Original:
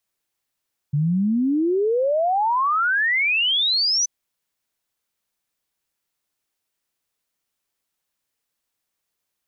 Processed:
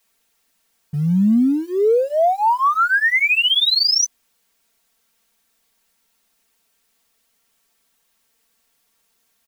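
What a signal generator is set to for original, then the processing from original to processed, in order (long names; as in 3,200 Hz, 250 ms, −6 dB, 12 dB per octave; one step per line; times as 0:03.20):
exponential sine sweep 140 Hz → 6,100 Hz 3.13 s −17 dBFS
mu-law and A-law mismatch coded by mu
comb filter 4.4 ms, depth 93%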